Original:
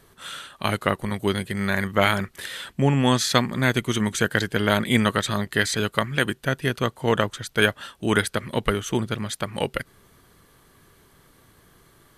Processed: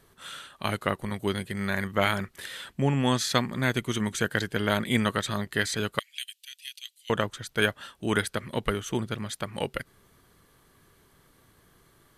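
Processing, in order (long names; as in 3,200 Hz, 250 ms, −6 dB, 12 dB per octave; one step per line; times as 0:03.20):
0:05.99–0:07.10: Butterworth high-pass 2,600 Hz 36 dB per octave
level −5 dB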